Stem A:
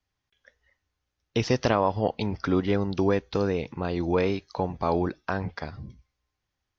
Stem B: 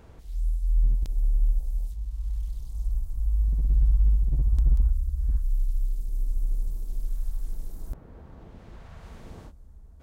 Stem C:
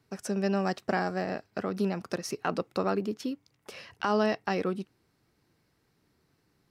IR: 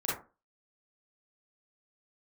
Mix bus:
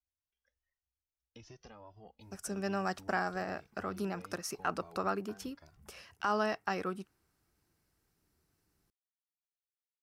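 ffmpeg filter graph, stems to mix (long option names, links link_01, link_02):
-filter_complex "[0:a]acompressor=threshold=-31dB:ratio=2,asplit=2[link_01][link_02];[link_02]adelay=2.1,afreqshift=2.4[link_03];[link_01][link_03]amix=inputs=2:normalize=1,volume=-10dB[link_04];[2:a]adynamicequalizer=threshold=0.00631:dfrequency=1300:dqfactor=0.87:tfrequency=1300:tqfactor=0.87:attack=5:release=100:ratio=0.375:range=4:mode=boostabove:tftype=bell,adelay=2200,volume=2dB[link_05];[link_04][link_05]amix=inputs=2:normalize=0,equalizer=frequency=125:width_type=o:width=1:gain=-10,equalizer=frequency=250:width_type=o:width=1:gain=-8,equalizer=frequency=500:width_type=o:width=1:gain=-9,equalizer=frequency=1000:width_type=o:width=1:gain=-7,equalizer=frequency=2000:width_type=o:width=1:gain=-8,equalizer=frequency=4000:width_type=o:width=1:gain=-9"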